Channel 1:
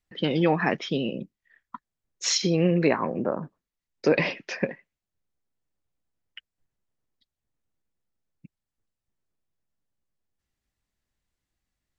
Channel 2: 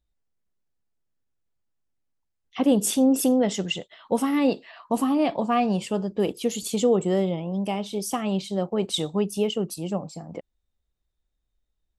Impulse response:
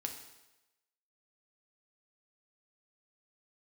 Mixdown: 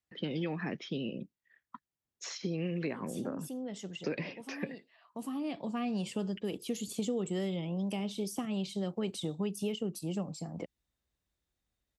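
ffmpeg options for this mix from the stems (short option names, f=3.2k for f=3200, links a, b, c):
-filter_complex "[0:a]volume=-6dB,asplit=2[a][b];[1:a]adelay=250,volume=-1.5dB[c];[b]apad=whole_len=539486[d];[c][d]sidechaincompress=threshold=-48dB:ratio=5:attack=8.1:release=909[e];[a][e]amix=inputs=2:normalize=0,acrossover=split=400|1600[f][g][h];[f]acompressor=threshold=-33dB:ratio=4[i];[g]acompressor=threshold=-47dB:ratio=4[j];[h]acompressor=threshold=-44dB:ratio=4[k];[i][j][k]amix=inputs=3:normalize=0,highpass=68"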